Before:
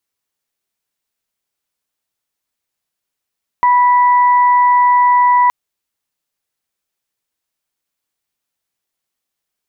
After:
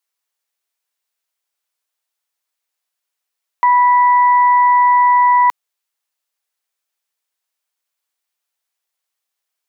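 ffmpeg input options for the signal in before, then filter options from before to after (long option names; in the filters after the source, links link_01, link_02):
-f lavfi -i "aevalsrc='0.422*sin(2*PI*983*t)+0.0841*sin(2*PI*1966*t)':duration=1.87:sample_rate=44100"
-af "highpass=570"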